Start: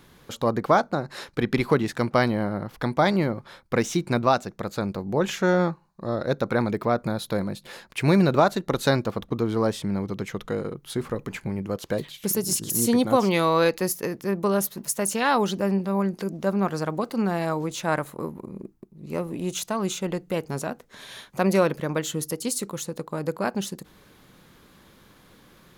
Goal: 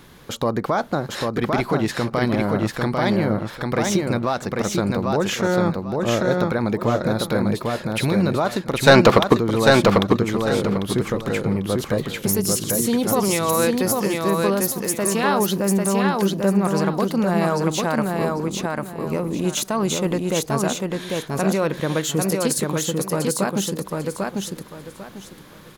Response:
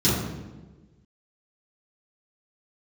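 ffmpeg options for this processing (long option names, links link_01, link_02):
-filter_complex "[0:a]alimiter=limit=-18dB:level=0:latency=1:release=110,asplit=3[link_01][link_02][link_03];[link_01]afade=type=out:start_time=8.86:duration=0.02[link_04];[link_02]asplit=2[link_05][link_06];[link_06]highpass=frequency=720:poles=1,volume=26dB,asoftclip=type=tanh:threshold=-4dB[link_07];[link_05][link_07]amix=inputs=2:normalize=0,lowpass=frequency=3800:poles=1,volume=-6dB,afade=type=in:start_time=8.86:duration=0.02,afade=type=out:start_time=9.36:duration=0.02[link_08];[link_03]afade=type=in:start_time=9.36:duration=0.02[link_09];[link_04][link_08][link_09]amix=inputs=3:normalize=0,asplit=2[link_10][link_11];[link_11]aecho=0:1:796|1592|2388|3184:0.708|0.177|0.0442|0.0111[link_12];[link_10][link_12]amix=inputs=2:normalize=0,volume=6.5dB"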